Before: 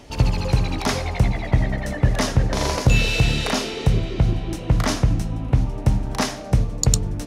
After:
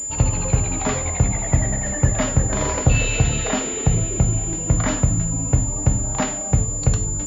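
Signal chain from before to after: bin magnitudes rounded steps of 15 dB; non-linear reverb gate 0.13 s falling, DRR 8 dB; pulse-width modulation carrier 7100 Hz

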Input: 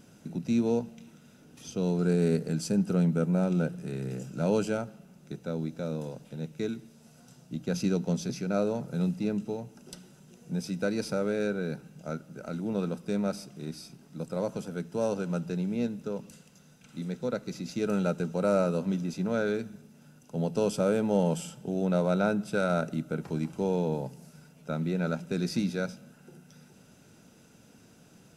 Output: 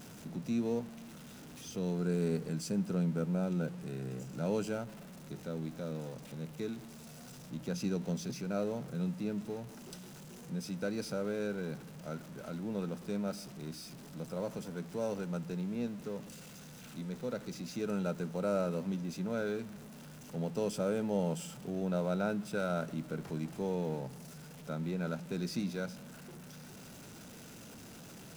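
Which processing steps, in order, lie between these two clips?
zero-crossing step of -39 dBFS; gain -7.5 dB

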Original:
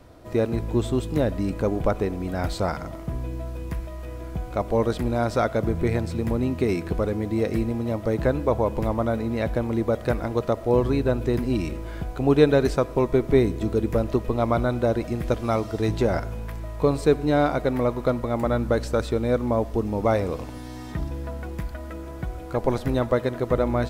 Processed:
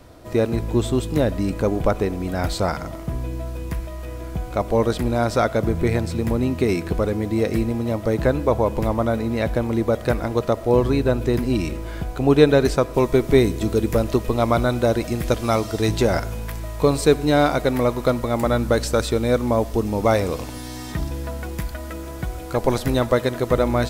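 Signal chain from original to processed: high shelf 3000 Hz +4.5 dB, from 12.94 s +10.5 dB; gain +3 dB

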